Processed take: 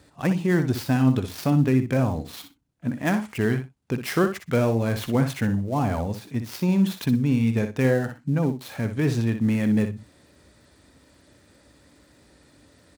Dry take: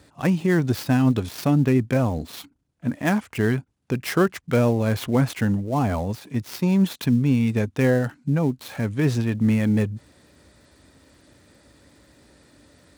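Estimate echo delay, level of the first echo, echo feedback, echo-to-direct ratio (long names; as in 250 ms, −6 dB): 61 ms, −9.0 dB, 15%, −9.0 dB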